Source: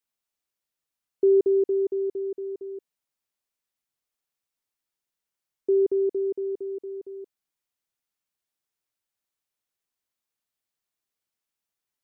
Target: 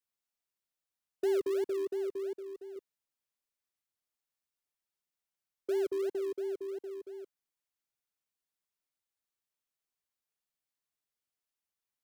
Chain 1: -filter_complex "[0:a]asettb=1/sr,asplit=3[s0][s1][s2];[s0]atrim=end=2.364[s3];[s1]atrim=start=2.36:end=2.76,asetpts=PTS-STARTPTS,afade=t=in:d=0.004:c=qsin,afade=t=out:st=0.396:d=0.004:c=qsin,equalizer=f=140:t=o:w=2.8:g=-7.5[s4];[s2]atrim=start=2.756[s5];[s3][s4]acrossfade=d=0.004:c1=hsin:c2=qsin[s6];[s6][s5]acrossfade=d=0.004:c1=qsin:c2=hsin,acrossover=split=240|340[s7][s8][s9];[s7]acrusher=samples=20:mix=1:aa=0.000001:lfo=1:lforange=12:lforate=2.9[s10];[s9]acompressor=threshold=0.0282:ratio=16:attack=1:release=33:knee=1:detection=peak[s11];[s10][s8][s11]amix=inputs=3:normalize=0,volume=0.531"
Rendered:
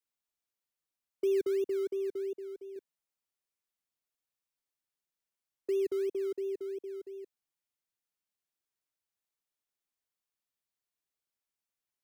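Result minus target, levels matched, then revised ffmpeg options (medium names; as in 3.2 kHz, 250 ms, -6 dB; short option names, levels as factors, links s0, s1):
decimation with a swept rate: distortion -15 dB
-filter_complex "[0:a]asettb=1/sr,asplit=3[s0][s1][s2];[s0]atrim=end=2.364[s3];[s1]atrim=start=2.36:end=2.76,asetpts=PTS-STARTPTS,afade=t=in:d=0.004:c=qsin,afade=t=out:st=0.396:d=0.004:c=qsin,equalizer=f=140:t=o:w=2.8:g=-7.5[s4];[s2]atrim=start=2.756[s5];[s3][s4]acrossfade=d=0.004:c1=hsin:c2=qsin[s6];[s6][s5]acrossfade=d=0.004:c1=qsin:c2=hsin,acrossover=split=240|340[s7][s8][s9];[s7]acrusher=samples=49:mix=1:aa=0.000001:lfo=1:lforange=29.4:lforate=2.9[s10];[s9]acompressor=threshold=0.0282:ratio=16:attack=1:release=33:knee=1:detection=peak[s11];[s10][s8][s11]amix=inputs=3:normalize=0,volume=0.531"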